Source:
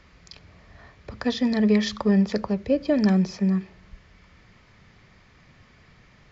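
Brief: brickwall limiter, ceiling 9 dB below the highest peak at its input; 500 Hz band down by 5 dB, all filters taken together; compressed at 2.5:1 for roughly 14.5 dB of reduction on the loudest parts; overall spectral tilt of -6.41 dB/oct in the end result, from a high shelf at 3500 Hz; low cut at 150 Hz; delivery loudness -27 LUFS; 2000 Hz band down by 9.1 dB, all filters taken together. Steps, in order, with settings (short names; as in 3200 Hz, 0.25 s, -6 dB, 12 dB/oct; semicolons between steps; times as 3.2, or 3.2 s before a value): HPF 150 Hz; bell 500 Hz -5.5 dB; bell 2000 Hz -8 dB; high shelf 3500 Hz -9 dB; compressor 2.5:1, threshold -41 dBFS; gain +15.5 dB; limiter -18 dBFS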